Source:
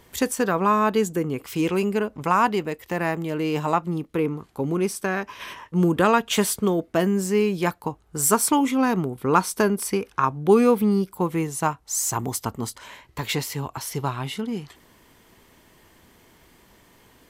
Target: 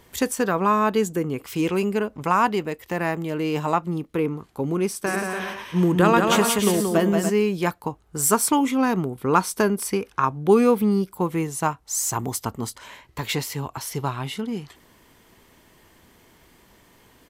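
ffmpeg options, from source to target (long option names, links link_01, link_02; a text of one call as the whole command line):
ffmpeg -i in.wav -filter_complex "[0:a]asplit=3[link_01][link_02][link_03];[link_01]afade=type=out:start_time=5.05:duration=0.02[link_04];[link_02]aecho=1:1:180|288|352.8|391.7|415:0.631|0.398|0.251|0.158|0.1,afade=type=in:start_time=5.05:duration=0.02,afade=type=out:start_time=7.29:duration=0.02[link_05];[link_03]afade=type=in:start_time=7.29:duration=0.02[link_06];[link_04][link_05][link_06]amix=inputs=3:normalize=0" out.wav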